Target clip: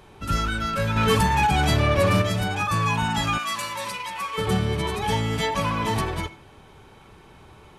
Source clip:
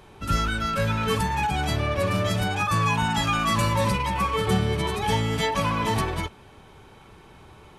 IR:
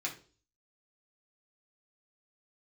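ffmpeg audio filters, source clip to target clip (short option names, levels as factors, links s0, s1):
-filter_complex "[0:a]asettb=1/sr,asplit=3[s0][s1][s2];[s0]atrim=end=0.964[s3];[s1]atrim=start=0.96:end=2.22,asetpts=PTS-STARTPTS,afade=t=in:d=0.004:c=qsin,afade=t=out:st=1.256:d=0.004:c=qsin,acontrast=50[s4];[s2]atrim=start=2.216[s5];[s3][s4]acrossfade=d=0.004:c1=hsin:c2=qsin[s6];[s6][s5]acrossfade=d=0.004:c1=qsin:c2=hsin,asplit=2[s7][s8];[1:a]atrim=start_sample=2205,adelay=82[s9];[s8][s9]afir=irnorm=-1:irlink=0,volume=0.0841[s10];[s7][s10]amix=inputs=2:normalize=0,asoftclip=type=tanh:threshold=0.335,asettb=1/sr,asplit=3[s11][s12][s13];[s11]atrim=end=3.384[s14];[s12]atrim=start=3.38:end=4.38,asetpts=PTS-STARTPTS,afade=t=in:d=0.004:c=qsin,afade=t=out:st=0.996:d=0.004:c=qsin,highpass=f=1500:p=1[s15];[s13]atrim=start=4.376[s16];[s14][s15]acrossfade=d=0.004:c1=hsin:c2=qsin[s17];[s17][s16]acrossfade=d=0.004:c1=qsin:c2=hsin"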